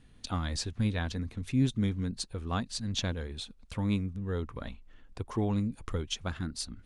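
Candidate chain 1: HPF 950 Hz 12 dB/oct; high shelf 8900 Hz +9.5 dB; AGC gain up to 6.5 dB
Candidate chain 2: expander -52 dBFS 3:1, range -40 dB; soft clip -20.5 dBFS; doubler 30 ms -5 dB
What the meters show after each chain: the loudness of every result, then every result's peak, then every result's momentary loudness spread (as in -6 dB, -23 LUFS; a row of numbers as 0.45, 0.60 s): -33.5, -32.5 LUFS; -11.0, -18.0 dBFS; 14, 11 LU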